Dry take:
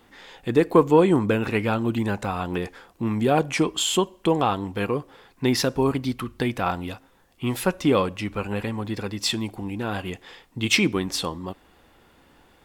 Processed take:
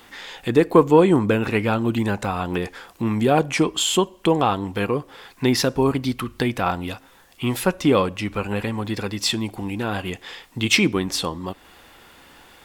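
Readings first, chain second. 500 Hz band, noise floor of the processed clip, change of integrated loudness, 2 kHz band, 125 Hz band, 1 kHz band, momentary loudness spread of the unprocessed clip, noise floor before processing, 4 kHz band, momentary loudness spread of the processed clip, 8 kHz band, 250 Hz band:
+2.5 dB, -52 dBFS, +2.5 dB, +3.0 dB, +2.5 dB, +2.5 dB, 12 LU, -58 dBFS, +2.5 dB, 12 LU, +2.5 dB, +2.5 dB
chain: mismatched tape noise reduction encoder only; gain +2.5 dB

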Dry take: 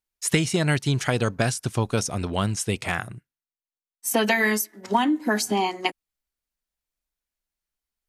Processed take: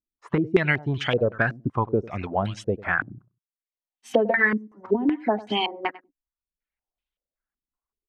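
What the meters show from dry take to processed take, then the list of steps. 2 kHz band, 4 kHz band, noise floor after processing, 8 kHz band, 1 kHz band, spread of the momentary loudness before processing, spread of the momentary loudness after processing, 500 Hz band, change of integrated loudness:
+2.0 dB, -3.0 dB, under -85 dBFS, under -20 dB, -2.0 dB, 7 LU, 8 LU, +2.5 dB, -0.5 dB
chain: reverb removal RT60 0.58 s; on a send: feedback echo 98 ms, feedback 19%, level -18.5 dB; on the sum: stepped low-pass 5.3 Hz 280–3100 Hz; gain -3 dB

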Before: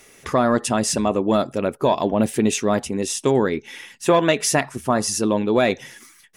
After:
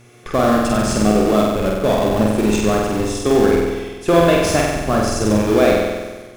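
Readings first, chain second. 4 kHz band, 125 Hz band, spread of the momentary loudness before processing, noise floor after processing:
+1.5 dB, +6.0 dB, 6 LU, -39 dBFS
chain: HPF 43 Hz 24 dB/oct; high shelf 6900 Hz -9 dB; notch comb 950 Hz; in parallel at -3.5 dB: Schmitt trigger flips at -20 dBFS; on the sum: buzz 120 Hz, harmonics 37, -47 dBFS -8 dB/oct; on a send: flutter echo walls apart 8.1 m, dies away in 1.3 s; on the sum: gain -1 dB

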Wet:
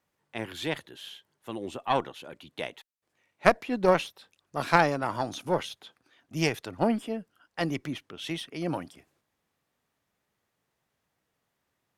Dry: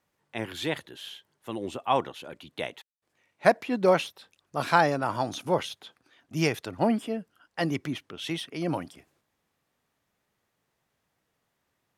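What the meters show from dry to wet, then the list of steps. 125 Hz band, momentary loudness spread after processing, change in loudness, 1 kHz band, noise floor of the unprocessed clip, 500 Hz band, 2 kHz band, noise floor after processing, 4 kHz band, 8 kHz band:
-1.0 dB, 19 LU, -1.0 dB, -1.0 dB, -79 dBFS, -1.5 dB, 0.0 dB, -81 dBFS, -1.0 dB, -1.0 dB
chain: added harmonics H 2 -6 dB, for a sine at -4.5 dBFS; gain -2 dB

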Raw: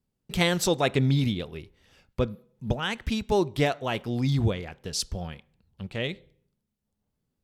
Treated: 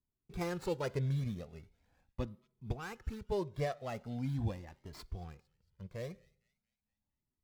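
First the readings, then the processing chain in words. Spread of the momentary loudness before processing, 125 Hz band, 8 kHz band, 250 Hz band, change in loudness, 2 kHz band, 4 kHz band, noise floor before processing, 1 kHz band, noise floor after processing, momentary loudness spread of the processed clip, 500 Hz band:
16 LU, -10.5 dB, -21.0 dB, -13.0 dB, -12.0 dB, -16.5 dB, -21.5 dB, -81 dBFS, -12.5 dB, under -85 dBFS, 16 LU, -11.5 dB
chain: median filter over 15 samples; thin delay 0.227 s, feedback 46%, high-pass 2100 Hz, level -22.5 dB; cascading flanger rising 0.41 Hz; gain -6.5 dB

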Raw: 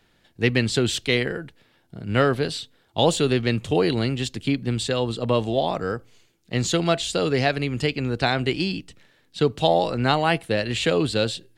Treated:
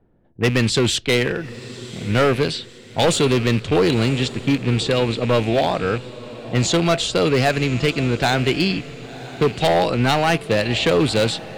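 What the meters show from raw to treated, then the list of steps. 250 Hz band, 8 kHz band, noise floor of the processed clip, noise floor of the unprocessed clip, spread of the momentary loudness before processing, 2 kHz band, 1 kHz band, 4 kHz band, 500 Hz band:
+4.0 dB, +5.0 dB, -42 dBFS, -63 dBFS, 7 LU, +4.0 dB, +3.5 dB, +4.0 dB, +4.0 dB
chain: rattling part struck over -33 dBFS, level -27 dBFS; low-pass opened by the level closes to 570 Hz, open at -18.5 dBFS; hard clip -17 dBFS, distortion -11 dB; diffused feedback echo 1.041 s, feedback 43%, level -16 dB; gain +5.5 dB

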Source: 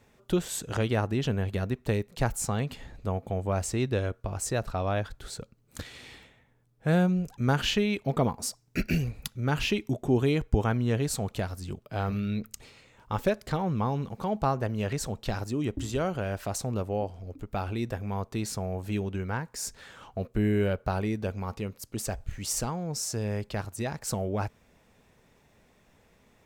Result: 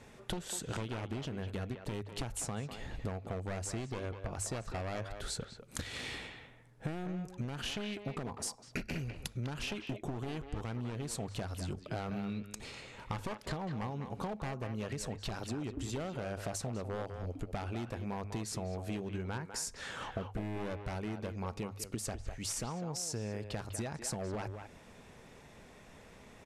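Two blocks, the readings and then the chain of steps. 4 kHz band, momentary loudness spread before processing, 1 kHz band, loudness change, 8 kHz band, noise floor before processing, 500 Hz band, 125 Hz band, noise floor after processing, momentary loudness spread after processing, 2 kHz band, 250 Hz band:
-6.5 dB, 10 LU, -9.0 dB, -9.5 dB, -5.5 dB, -64 dBFS, -10.5 dB, -10.0 dB, -56 dBFS, 6 LU, -8.0 dB, -10.0 dB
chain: one-sided fold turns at -26 dBFS; steep low-pass 12000 Hz 72 dB/oct; notches 50/100 Hz; limiter -19 dBFS, peak gain reduction 8.5 dB; compressor 12:1, threshold -42 dBFS, peak gain reduction 18.5 dB; speakerphone echo 0.2 s, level -7 dB; gain +6.5 dB

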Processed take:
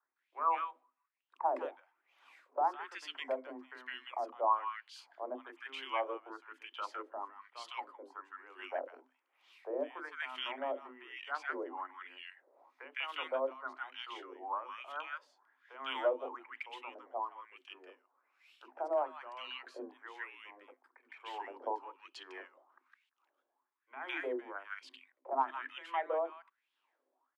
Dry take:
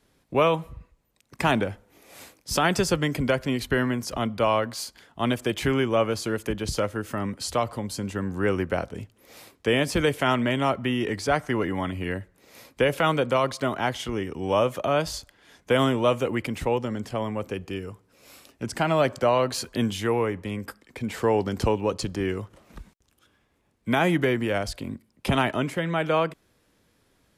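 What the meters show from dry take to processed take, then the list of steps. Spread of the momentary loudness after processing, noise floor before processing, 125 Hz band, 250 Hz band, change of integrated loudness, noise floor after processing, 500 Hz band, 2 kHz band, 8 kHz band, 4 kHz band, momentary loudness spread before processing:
16 LU, -67 dBFS, under -40 dB, -26.0 dB, -14.0 dB, -85 dBFS, -15.5 dB, -14.0 dB, under -25 dB, -14.5 dB, 12 LU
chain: wah 1.1 Hz 530–3100 Hz, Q 5.2; rippled Chebyshev high-pass 250 Hz, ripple 9 dB; three bands offset in time mids, lows, highs 30/160 ms, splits 410/1400 Hz; gain +4 dB

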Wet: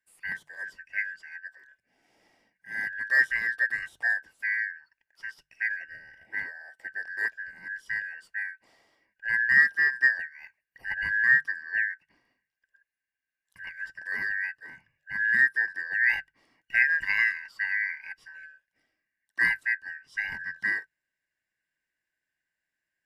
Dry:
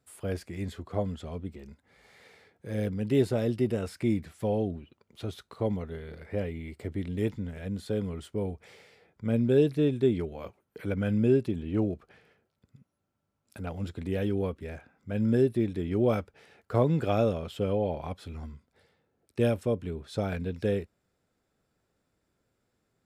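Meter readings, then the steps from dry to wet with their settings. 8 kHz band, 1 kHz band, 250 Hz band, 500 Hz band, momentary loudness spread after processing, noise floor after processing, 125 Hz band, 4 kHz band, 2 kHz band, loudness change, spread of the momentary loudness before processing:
n/a, -9.0 dB, under -25 dB, under -25 dB, 20 LU, under -85 dBFS, under -25 dB, -1.0 dB, +23.5 dB, +3.5 dB, 15 LU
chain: four-band scrambler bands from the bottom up 2143; notches 50/100/150 Hz; upward expander 1.5:1, over -43 dBFS; gain +3 dB

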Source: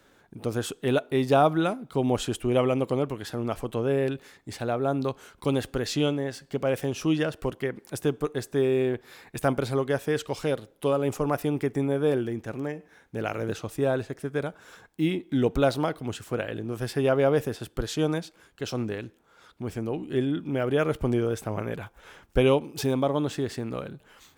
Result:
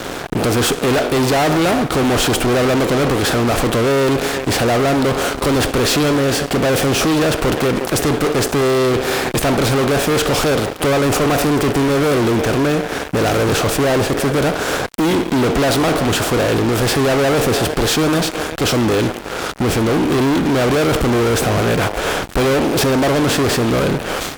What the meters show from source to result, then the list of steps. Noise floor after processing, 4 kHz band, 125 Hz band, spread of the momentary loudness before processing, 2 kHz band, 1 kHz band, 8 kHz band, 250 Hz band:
-27 dBFS, +17.5 dB, +11.5 dB, 11 LU, +16.5 dB, +13.5 dB, +20.0 dB, +11.5 dB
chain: per-bin compression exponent 0.6; speakerphone echo 0.36 s, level -18 dB; fuzz box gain 34 dB, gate -42 dBFS

